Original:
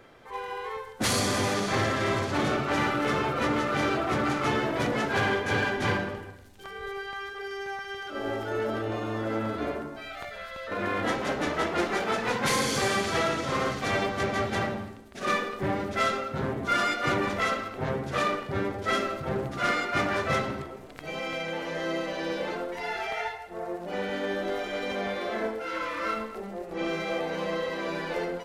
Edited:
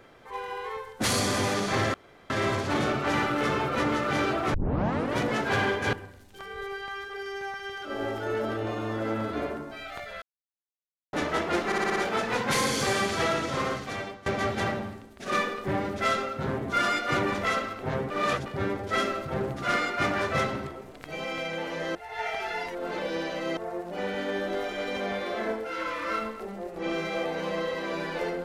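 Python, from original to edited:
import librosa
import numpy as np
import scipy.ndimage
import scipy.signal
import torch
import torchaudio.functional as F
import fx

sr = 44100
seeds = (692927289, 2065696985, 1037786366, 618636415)

y = fx.edit(x, sr, fx.insert_room_tone(at_s=1.94, length_s=0.36),
    fx.tape_start(start_s=4.18, length_s=0.64),
    fx.cut(start_s=5.57, length_s=0.61),
    fx.silence(start_s=10.47, length_s=0.91),
    fx.stutter(start_s=11.91, slice_s=0.06, count=6),
    fx.fade_out_to(start_s=13.49, length_s=0.72, floor_db=-21.5),
    fx.reverse_span(start_s=18.05, length_s=0.36),
    fx.reverse_span(start_s=21.9, length_s=1.62), tone=tone)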